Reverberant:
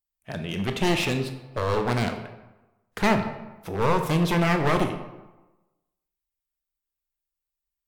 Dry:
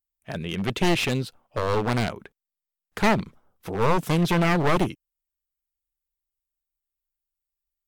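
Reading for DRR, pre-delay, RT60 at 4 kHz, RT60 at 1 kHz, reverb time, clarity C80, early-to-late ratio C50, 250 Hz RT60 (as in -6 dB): 5.5 dB, 18 ms, 0.65 s, 1.1 s, 1.1 s, 10.5 dB, 8.5 dB, 1.1 s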